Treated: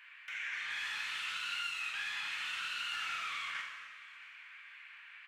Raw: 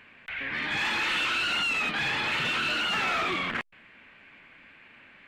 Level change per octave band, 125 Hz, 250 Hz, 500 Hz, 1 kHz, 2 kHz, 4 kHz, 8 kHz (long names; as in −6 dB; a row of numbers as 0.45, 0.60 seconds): below −25 dB, below −30 dB, below −25 dB, −12.5 dB, −10.0 dB, −10.0 dB, −6.5 dB